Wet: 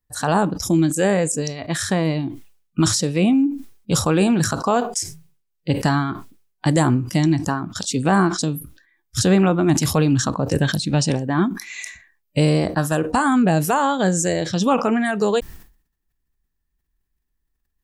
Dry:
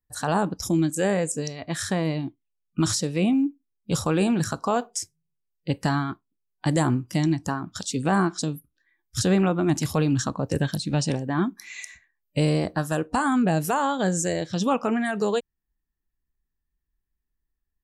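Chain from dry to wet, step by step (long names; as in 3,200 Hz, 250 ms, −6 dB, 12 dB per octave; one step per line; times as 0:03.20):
level that may fall only so fast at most 110 dB per second
level +5 dB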